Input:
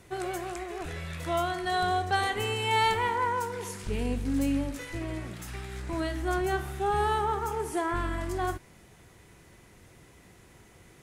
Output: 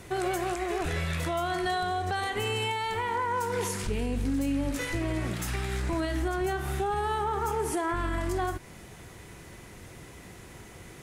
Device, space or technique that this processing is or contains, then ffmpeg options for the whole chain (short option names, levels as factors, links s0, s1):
stacked limiters: -af "alimiter=limit=0.106:level=0:latency=1:release=417,alimiter=level_in=1.12:limit=0.0631:level=0:latency=1:release=191,volume=0.891,alimiter=level_in=1.78:limit=0.0631:level=0:latency=1:release=92,volume=0.562,volume=2.51"